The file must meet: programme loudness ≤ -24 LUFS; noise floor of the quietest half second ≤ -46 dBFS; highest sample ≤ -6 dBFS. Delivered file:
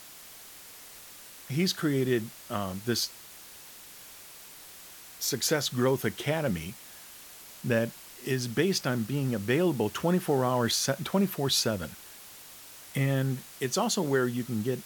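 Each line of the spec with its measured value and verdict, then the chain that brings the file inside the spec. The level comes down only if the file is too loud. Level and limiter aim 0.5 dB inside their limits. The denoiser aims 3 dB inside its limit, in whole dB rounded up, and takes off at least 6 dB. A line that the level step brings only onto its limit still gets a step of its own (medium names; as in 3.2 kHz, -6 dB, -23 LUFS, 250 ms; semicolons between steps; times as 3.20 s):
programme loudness -29.0 LUFS: pass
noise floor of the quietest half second -48 dBFS: pass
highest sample -13.0 dBFS: pass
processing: none needed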